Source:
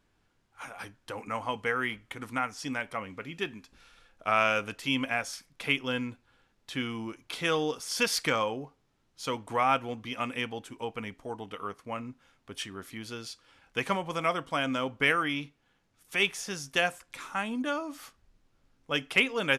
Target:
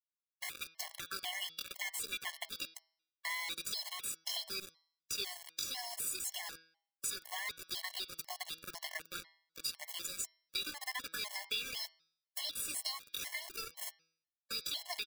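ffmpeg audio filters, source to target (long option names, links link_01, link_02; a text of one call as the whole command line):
ffmpeg -i in.wav -filter_complex "[0:a]acrossover=split=240[link_01][link_02];[link_02]acompressor=threshold=-38dB:ratio=3[link_03];[link_01][link_03]amix=inputs=2:normalize=0,equalizer=frequency=11000:width=0.68:gain=-9,asetrate=68011,aresample=44100,atempo=0.64842,acrusher=bits=9:mode=log:mix=0:aa=0.000001,aderivative,aecho=1:1:2.9:0.5,asplit=2[link_04][link_05];[link_05]aecho=0:1:148:0.126[link_06];[link_04][link_06]amix=inputs=2:normalize=0,acrusher=bits=7:mix=0:aa=0.000001,acompressor=threshold=-50dB:ratio=3,atempo=1.3,bandreject=frequency=162.6:width_type=h:width=4,bandreject=frequency=325.2:width_type=h:width=4,bandreject=frequency=487.8:width_type=h:width=4,bandreject=frequency=650.4:width_type=h:width=4,bandreject=frequency=813:width_type=h:width=4,bandreject=frequency=975.6:width_type=h:width=4,bandreject=frequency=1138.2:width_type=h:width=4,bandreject=frequency=1300.8:width_type=h:width=4,bandreject=frequency=1463.4:width_type=h:width=4,bandreject=frequency=1626:width_type=h:width=4,bandreject=frequency=1788.6:width_type=h:width=4,bandreject=frequency=1951.2:width_type=h:width=4,bandreject=frequency=2113.8:width_type=h:width=4,bandreject=frequency=2276.4:width_type=h:width=4,bandreject=frequency=2439:width_type=h:width=4,bandreject=frequency=2601.6:width_type=h:width=4,bandreject=frequency=2764.2:width_type=h:width=4,bandreject=frequency=2926.8:width_type=h:width=4,bandreject=frequency=3089.4:width_type=h:width=4,bandreject=frequency=3252:width_type=h:width=4,bandreject=frequency=3414.6:width_type=h:width=4,bandreject=frequency=3577.2:width_type=h:width=4,bandreject=frequency=3739.8:width_type=h:width=4,bandreject=frequency=3902.4:width_type=h:width=4,bandreject=frequency=4065:width_type=h:width=4,bandreject=frequency=4227.6:width_type=h:width=4,bandreject=frequency=4390.2:width_type=h:width=4,bandreject=frequency=4552.8:width_type=h:width=4,bandreject=frequency=4715.4:width_type=h:width=4,bandreject=frequency=4878:width_type=h:width=4,bandreject=frequency=5040.6:width_type=h:width=4,bandreject=frequency=5203.2:width_type=h:width=4,bandreject=frequency=5365.8:width_type=h:width=4,bandreject=frequency=5528.4:width_type=h:width=4,bandreject=frequency=5691:width_type=h:width=4,bandreject=frequency=5853.6:width_type=h:width=4,afftfilt=real='re*gt(sin(2*PI*2*pts/sr)*(1-2*mod(floor(b*sr/1024/560),2)),0)':imag='im*gt(sin(2*PI*2*pts/sr)*(1-2*mod(floor(b*sr/1024/560),2)),0)':win_size=1024:overlap=0.75,volume=15.5dB" out.wav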